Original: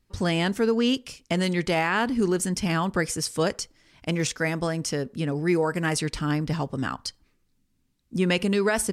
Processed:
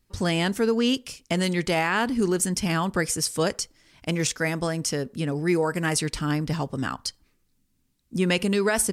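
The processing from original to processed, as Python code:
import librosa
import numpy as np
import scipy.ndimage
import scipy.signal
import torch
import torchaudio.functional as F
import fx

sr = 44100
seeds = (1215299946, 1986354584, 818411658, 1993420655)

y = fx.high_shelf(x, sr, hz=7000.0, db=7.0)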